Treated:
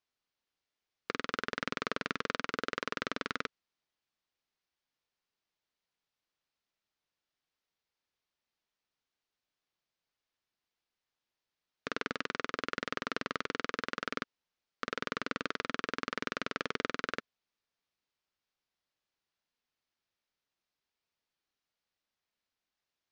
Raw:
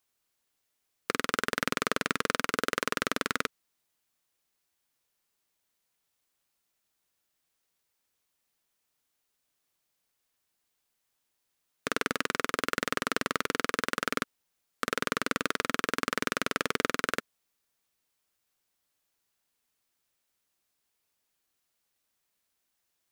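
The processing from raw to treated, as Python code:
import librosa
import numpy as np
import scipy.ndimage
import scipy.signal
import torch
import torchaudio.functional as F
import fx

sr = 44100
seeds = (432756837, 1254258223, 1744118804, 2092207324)

y = scipy.signal.sosfilt(scipy.signal.butter(4, 5500.0, 'lowpass', fs=sr, output='sos'), x)
y = y * librosa.db_to_amplitude(-6.0)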